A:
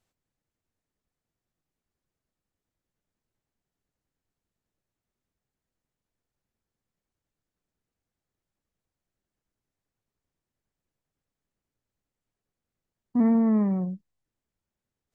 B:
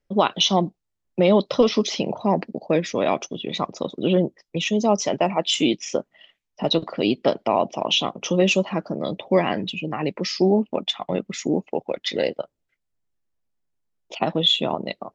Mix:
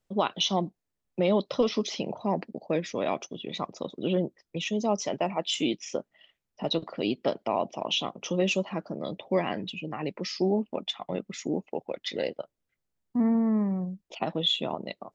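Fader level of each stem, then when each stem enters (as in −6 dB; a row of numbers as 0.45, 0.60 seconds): −3.0, −7.5 decibels; 0.00, 0.00 seconds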